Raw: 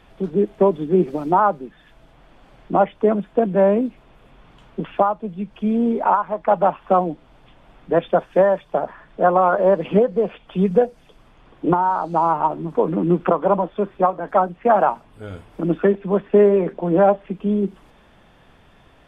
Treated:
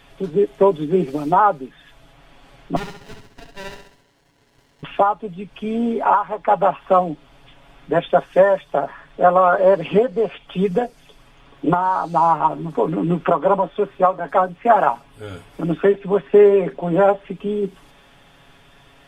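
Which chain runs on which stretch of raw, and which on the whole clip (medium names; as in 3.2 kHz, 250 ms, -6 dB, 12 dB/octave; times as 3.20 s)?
2.76–4.83 s: steep high-pass 930 Hz 72 dB/octave + flutter echo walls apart 11.5 m, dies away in 0.69 s + sliding maximum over 33 samples
whole clip: treble shelf 2 kHz +9 dB; comb 7.2 ms, depth 55%; trim -1 dB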